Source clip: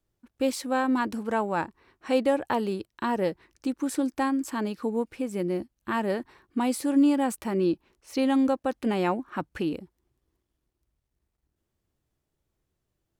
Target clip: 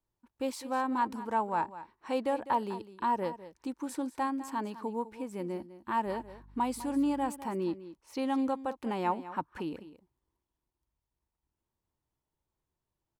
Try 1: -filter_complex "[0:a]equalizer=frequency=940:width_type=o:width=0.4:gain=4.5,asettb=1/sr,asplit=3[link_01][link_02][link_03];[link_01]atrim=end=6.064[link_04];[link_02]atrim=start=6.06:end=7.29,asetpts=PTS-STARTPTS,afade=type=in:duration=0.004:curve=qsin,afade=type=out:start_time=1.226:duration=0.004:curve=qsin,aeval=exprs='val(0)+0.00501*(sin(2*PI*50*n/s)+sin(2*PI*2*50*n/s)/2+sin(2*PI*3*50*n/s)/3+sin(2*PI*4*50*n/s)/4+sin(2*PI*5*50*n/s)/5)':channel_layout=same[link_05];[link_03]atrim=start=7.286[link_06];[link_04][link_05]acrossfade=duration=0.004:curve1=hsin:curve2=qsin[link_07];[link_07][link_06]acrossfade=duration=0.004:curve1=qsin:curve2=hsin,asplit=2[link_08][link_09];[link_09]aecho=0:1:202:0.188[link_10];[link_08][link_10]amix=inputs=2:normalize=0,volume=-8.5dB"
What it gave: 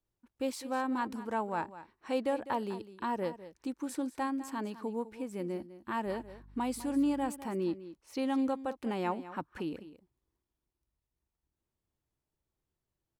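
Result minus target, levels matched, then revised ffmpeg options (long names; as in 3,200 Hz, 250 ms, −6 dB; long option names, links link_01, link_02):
1,000 Hz band −3.5 dB
-filter_complex "[0:a]equalizer=frequency=940:width_type=o:width=0.4:gain=11.5,asettb=1/sr,asplit=3[link_01][link_02][link_03];[link_01]atrim=end=6.064[link_04];[link_02]atrim=start=6.06:end=7.29,asetpts=PTS-STARTPTS,afade=type=in:duration=0.004:curve=qsin,afade=type=out:start_time=1.226:duration=0.004:curve=qsin,aeval=exprs='val(0)+0.00501*(sin(2*PI*50*n/s)+sin(2*PI*2*50*n/s)/2+sin(2*PI*3*50*n/s)/3+sin(2*PI*4*50*n/s)/4+sin(2*PI*5*50*n/s)/5)':channel_layout=same[link_05];[link_03]atrim=start=7.286[link_06];[link_04][link_05]acrossfade=duration=0.004:curve1=hsin:curve2=qsin[link_07];[link_07][link_06]acrossfade=duration=0.004:curve1=qsin:curve2=hsin,asplit=2[link_08][link_09];[link_09]aecho=0:1:202:0.188[link_10];[link_08][link_10]amix=inputs=2:normalize=0,volume=-8.5dB"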